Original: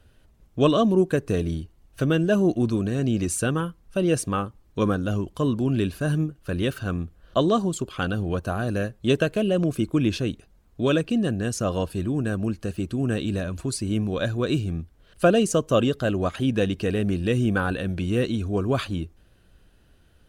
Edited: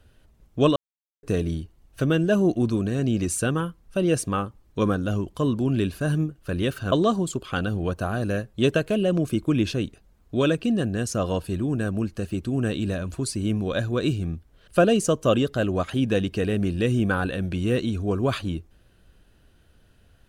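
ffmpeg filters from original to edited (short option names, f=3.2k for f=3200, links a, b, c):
-filter_complex "[0:a]asplit=4[a][b][c][d];[a]atrim=end=0.76,asetpts=PTS-STARTPTS,afade=t=out:st=0.756:d=0.004:c=hsin[e];[b]atrim=start=0.76:end=1.23,asetpts=PTS-STARTPTS,volume=0[f];[c]atrim=start=1.23:end=6.922,asetpts=PTS-STARTPTS,afade=t=in:d=0.004:c=hsin[g];[d]atrim=start=7.378[h];[e][f][g]concat=n=3:v=0:a=1[i];[i][h]acrossfade=d=0.004:c1=hsin:c2=hsin"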